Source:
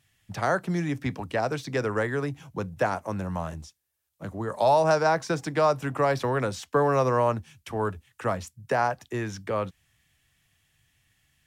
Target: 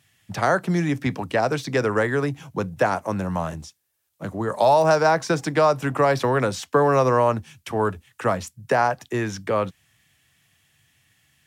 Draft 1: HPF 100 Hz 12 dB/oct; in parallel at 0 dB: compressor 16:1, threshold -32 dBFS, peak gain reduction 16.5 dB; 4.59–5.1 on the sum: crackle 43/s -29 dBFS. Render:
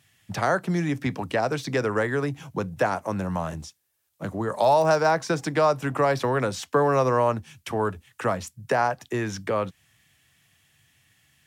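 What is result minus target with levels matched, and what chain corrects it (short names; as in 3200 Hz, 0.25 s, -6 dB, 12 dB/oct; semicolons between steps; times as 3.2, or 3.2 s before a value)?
compressor: peak gain reduction +10.5 dB
HPF 100 Hz 12 dB/oct; in parallel at 0 dB: compressor 16:1, threshold -21 dBFS, peak gain reduction 6 dB; 4.59–5.1 on the sum: crackle 43/s -29 dBFS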